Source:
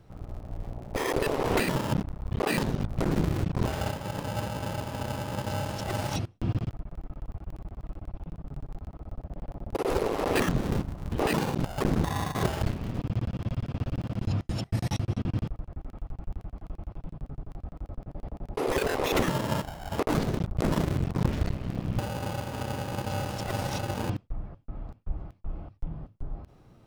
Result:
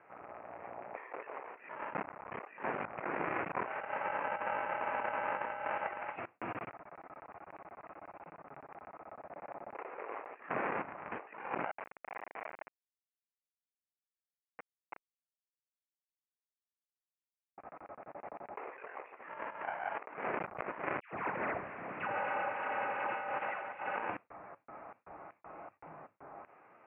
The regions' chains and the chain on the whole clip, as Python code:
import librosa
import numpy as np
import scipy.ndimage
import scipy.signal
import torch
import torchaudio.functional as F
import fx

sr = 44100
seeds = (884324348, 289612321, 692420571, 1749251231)

y = fx.chain(x, sr, fx.steep_highpass(hz=470.0, slope=96),
    fx.schmitt(flips_db=-27.5), at=(11.71, 17.58))
y = fx.chain(y, sr, fx.delta_hold(step_db=-39.5),
    fx.dispersion(late='lows', ms=124.0, hz=1100.0),
    fx.band_widen(depth_pct=70), at=(21.0, 23.96))
y = scipy.signal.sosfilt(scipy.signal.butter(2, 820.0, 'highpass', fs=sr, output='sos'), y)
y = fx.over_compress(y, sr, threshold_db=-41.0, ratio=-0.5)
y = scipy.signal.sosfilt(scipy.signal.butter(12, 2500.0, 'lowpass', fs=sr, output='sos'), y)
y = y * 10.0 ** (3.5 / 20.0)